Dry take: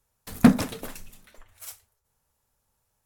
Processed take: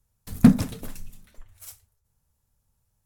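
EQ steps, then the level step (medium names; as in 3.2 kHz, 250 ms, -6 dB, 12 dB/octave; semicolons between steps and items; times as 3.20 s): tone controls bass +13 dB, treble +4 dB; -6.0 dB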